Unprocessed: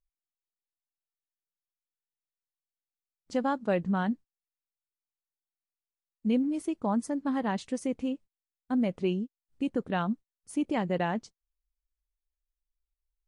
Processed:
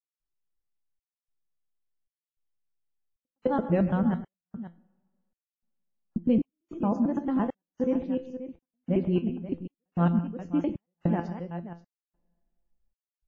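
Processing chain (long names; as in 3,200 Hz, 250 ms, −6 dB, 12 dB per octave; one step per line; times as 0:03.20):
reversed piece by piece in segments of 112 ms
tilt shelving filter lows +4.5 dB, about 740 Hz
tuned comb filter 170 Hz, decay 0.28 s, harmonics all, mix 70%
multi-tap delay 99/128/191/532 ms −18/−14/−18.5/−13 dB
coupled-rooms reverb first 0.81 s, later 2.5 s, DRR 19.5 dB
gate pattern "..xxxxxxxx." 152 BPM −60 dB
low-pass filter 2,500 Hz 6 dB per octave
low-shelf EQ 100 Hz +5 dB
level +8 dB
WMA 32 kbit/s 16,000 Hz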